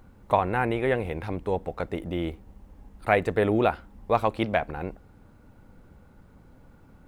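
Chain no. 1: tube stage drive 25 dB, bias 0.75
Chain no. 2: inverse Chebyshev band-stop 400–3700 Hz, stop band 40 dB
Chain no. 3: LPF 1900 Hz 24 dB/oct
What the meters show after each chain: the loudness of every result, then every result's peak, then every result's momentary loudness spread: -33.5, -37.5, -27.5 LUFS; -21.5, -22.5, -7.5 dBFS; 9, 23, 12 LU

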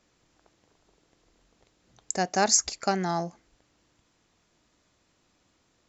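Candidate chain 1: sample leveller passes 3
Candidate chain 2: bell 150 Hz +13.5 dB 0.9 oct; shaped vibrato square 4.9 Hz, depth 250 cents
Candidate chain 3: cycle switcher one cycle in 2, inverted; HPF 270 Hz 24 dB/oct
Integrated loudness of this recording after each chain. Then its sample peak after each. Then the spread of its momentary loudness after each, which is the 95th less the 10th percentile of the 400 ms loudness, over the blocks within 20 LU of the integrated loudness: -18.0, -24.0, -26.5 LUFS; -7.5, -8.0, -7.5 dBFS; 10, 9, 12 LU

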